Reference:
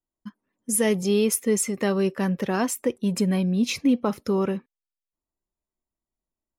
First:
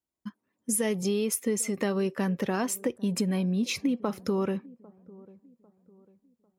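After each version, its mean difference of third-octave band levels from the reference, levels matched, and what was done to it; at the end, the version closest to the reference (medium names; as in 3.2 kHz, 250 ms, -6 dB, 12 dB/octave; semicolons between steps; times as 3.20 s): 2.0 dB: high-pass 61 Hz; compression, threshold -24 dBFS, peak gain reduction 8 dB; on a send: feedback echo behind a low-pass 798 ms, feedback 37%, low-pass 820 Hz, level -22 dB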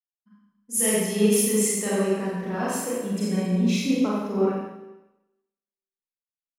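9.5 dB: bass shelf 180 Hz -3.5 dB; Schroeder reverb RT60 1.5 s, combs from 30 ms, DRR -7 dB; three bands expanded up and down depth 70%; trim -7.5 dB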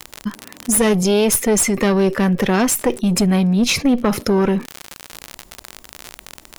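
5.5 dB: single-diode clipper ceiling -24.5 dBFS; crackle 60 per s -47 dBFS; level flattener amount 50%; trim +7.5 dB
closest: first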